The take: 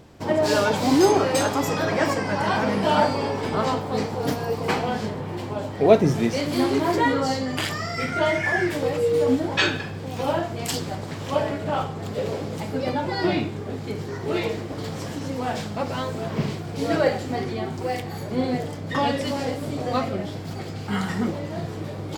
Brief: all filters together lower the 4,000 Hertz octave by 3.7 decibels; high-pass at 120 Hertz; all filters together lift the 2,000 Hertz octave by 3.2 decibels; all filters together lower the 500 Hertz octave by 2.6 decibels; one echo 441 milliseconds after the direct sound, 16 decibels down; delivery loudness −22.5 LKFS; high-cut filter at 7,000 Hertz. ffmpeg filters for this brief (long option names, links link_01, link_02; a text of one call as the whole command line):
ffmpeg -i in.wav -af "highpass=120,lowpass=7000,equalizer=frequency=500:width_type=o:gain=-3.5,equalizer=frequency=2000:width_type=o:gain=5.5,equalizer=frequency=4000:width_type=o:gain=-6.5,aecho=1:1:441:0.158,volume=3dB" out.wav